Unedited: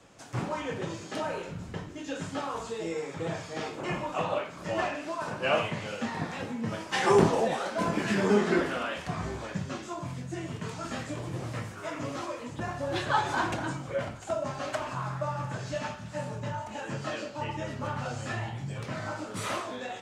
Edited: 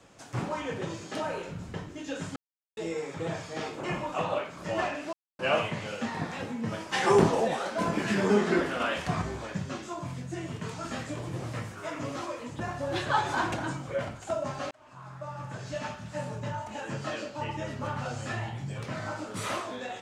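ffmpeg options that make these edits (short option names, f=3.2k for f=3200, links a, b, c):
-filter_complex "[0:a]asplit=8[a][b][c][d][e][f][g][h];[a]atrim=end=2.36,asetpts=PTS-STARTPTS,afade=t=out:st=2.356:d=0.004:c=hsin[i];[b]atrim=start=2.36:end=2.77,asetpts=PTS-STARTPTS,volume=0[j];[c]atrim=start=2.77:end=5.13,asetpts=PTS-STARTPTS,afade=t=in:d=0.004:c=hsin,afade=t=out:st=2.356:d=0.004:c=hsin[k];[d]atrim=start=5.13:end=5.39,asetpts=PTS-STARTPTS,volume=0[l];[e]atrim=start=5.39:end=8.802,asetpts=PTS-STARTPTS,afade=t=in:d=0.004:c=hsin[m];[f]atrim=start=8.798:end=9.222,asetpts=PTS-STARTPTS,volume=4dB[n];[g]atrim=start=9.218:end=14.71,asetpts=PTS-STARTPTS,afade=t=out:st=5.488:d=0.004:c=hsin[o];[h]atrim=start=14.71,asetpts=PTS-STARTPTS,afade=t=in:d=1.28[p];[i][j][k][l][m]concat=n=5:v=0:a=1[q];[q][n]acrossfade=d=0.004:c1=hsin:c2=hsin[r];[o][p]concat=n=2:v=0:a=1[s];[r][s]acrossfade=d=0.004:c1=hsin:c2=hsin"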